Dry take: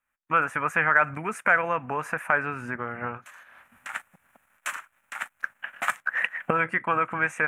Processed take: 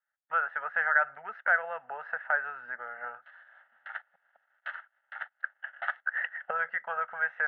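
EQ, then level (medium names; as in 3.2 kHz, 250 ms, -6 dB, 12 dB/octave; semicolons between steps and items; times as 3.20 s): band-pass 760–3600 Hz; distance through air 370 m; static phaser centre 1.6 kHz, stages 8; 0.0 dB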